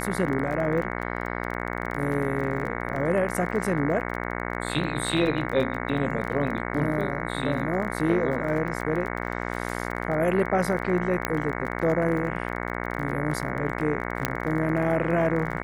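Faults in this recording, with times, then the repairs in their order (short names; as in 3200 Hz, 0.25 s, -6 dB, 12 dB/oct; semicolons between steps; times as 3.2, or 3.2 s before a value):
buzz 60 Hz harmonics 37 -31 dBFS
crackle 25/s -32 dBFS
2.96 gap 2.7 ms
11.25 pop -9 dBFS
14.25 pop -7 dBFS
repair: de-click; de-hum 60 Hz, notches 37; interpolate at 2.96, 2.7 ms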